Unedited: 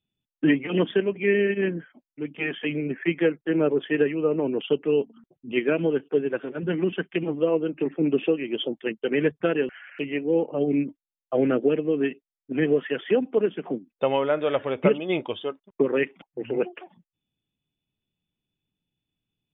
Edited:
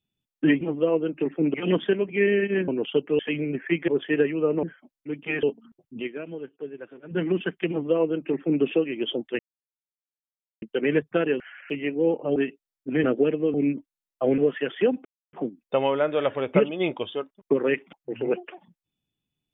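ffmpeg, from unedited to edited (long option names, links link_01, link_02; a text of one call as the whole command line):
ffmpeg -i in.wav -filter_complex "[0:a]asplit=17[link_01][link_02][link_03][link_04][link_05][link_06][link_07][link_08][link_09][link_10][link_11][link_12][link_13][link_14][link_15][link_16][link_17];[link_01]atrim=end=0.612[link_18];[link_02]atrim=start=7.208:end=8.142[link_19];[link_03]atrim=start=0.608:end=1.752[link_20];[link_04]atrim=start=4.438:end=4.952[link_21];[link_05]atrim=start=2.548:end=3.242[link_22];[link_06]atrim=start=3.688:end=4.442[link_23];[link_07]atrim=start=1.748:end=2.552[link_24];[link_08]atrim=start=4.948:end=5.85,asetpts=PTS-STARTPTS,afade=type=out:start_time=0.582:duration=0.32:curve=exp:silence=0.237137[link_25];[link_09]atrim=start=5.85:end=6.35,asetpts=PTS-STARTPTS,volume=-12.5dB[link_26];[link_10]atrim=start=6.35:end=8.91,asetpts=PTS-STARTPTS,afade=type=in:duration=0.32:curve=exp:silence=0.237137,afade=type=out:start_time=2.556:duration=0.004:curve=hsin,apad=pad_dur=1.23[link_27];[link_11]atrim=start=8.91:end=10.652,asetpts=PTS-STARTPTS,afade=type=in:duration=0.004:curve=hsin[link_28];[link_12]atrim=start=11.988:end=12.672[link_29];[link_13]atrim=start=11.488:end=11.992[link_30];[link_14]atrim=start=10.648:end=11.492[link_31];[link_15]atrim=start=12.668:end=13.34,asetpts=PTS-STARTPTS,afade=type=out:start_time=0.668:duration=0.004:curve=hsin[link_32];[link_16]atrim=start=13.34:end=13.62,asetpts=PTS-STARTPTS,volume=0[link_33];[link_17]atrim=start=13.62,asetpts=PTS-STARTPTS,afade=type=in:duration=0.004:curve=hsin[link_34];[link_18][link_19]acrossfade=duration=0.004:curve1=hsin:curve2=hsin[link_35];[link_35][link_20]acrossfade=duration=0.004:curve1=hsin:curve2=hsin[link_36];[link_36][link_21]acrossfade=duration=0.004:curve1=hsin:curve2=hsin[link_37];[link_37][link_22]acrossfade=duration=0.004:curve1=hsin:curve2=hsin[link_38];[link_38][link_23]acrossfade=duration=0.004:curve1=hsin:curve2=hsin[link_39];[link_39][link_24]acrossfade=duration=0.004:curve1=hsin:curve2=hsin[link_40];[link_25][link_26][link_27][link_28]concat=n=4:v=0:a=1[link_41];[link_40][link_41]acrossfade=duration=0.004:curve1=hsin:curve2=hsin[link_42];[link_42][link_29]acrossfade=duration=0.004:curve1=hsin:curve2=hsin[link_43];[link_43][link_30]acrossfade=duration=0.004:curve1=hsin:curve2=hsin[link_44];[link_44][link_31]acrossfade=duration=0.004:curve1=hsin:curve2=hsin[link_45];[link_32][link_33][link_34]concat=n=3:v=0:a=1[link_46];[link_45][link_46]acrossfade=duration=0.004:curve1=hsin:curve2=hsin" out.wav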